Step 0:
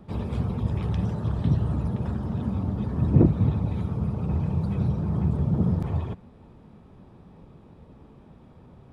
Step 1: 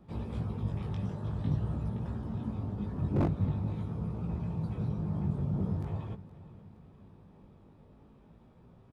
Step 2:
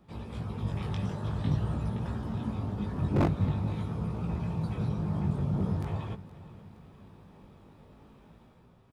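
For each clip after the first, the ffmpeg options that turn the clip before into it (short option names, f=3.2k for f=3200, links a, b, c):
-af "aeval=exprs='0.237*(abs(mod(val(0)/0.237+3,4)-2)-1)':c=same,flanger=delay=17.5:depth=3.1:speed=0.46,aecho=1:1:469|938|1407|1876:0.126|0.0667|0.0354|0.0187,volume=-5dB"
-af "tiltshelf=f=920:g=-4,dynaudnorm=f=100:g=11:m=6dB"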